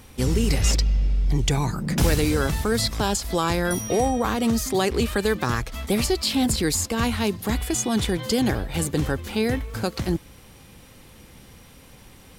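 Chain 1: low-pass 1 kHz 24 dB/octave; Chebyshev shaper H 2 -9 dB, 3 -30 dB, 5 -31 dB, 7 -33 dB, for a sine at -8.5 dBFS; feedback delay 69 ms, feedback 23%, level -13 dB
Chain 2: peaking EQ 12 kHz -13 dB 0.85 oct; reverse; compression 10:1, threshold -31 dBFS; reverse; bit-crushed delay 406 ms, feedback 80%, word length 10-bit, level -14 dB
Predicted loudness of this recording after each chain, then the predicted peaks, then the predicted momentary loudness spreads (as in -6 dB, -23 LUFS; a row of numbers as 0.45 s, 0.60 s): -24.5 LUFS, -35.5 LUFS; -5.0 dBFS, -18.5 dBFS; 5 LU, 12 LU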